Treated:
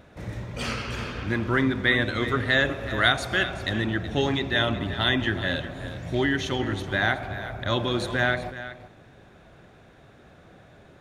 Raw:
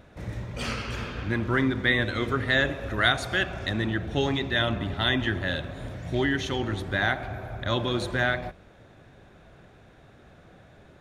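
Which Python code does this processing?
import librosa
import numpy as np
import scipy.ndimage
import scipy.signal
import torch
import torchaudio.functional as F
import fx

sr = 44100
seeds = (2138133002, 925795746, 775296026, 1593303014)

y = fx.low_shelf(x, sr, hz=62.0, db=-6.0)
y = y + 10.0 ** (-13.5 / 20.0) * np.pad(y, (int(374 * sr / 1000.0), 0))[:len(y)]
y = F.gain(torch.from_numpy(y), 1.5).numpy()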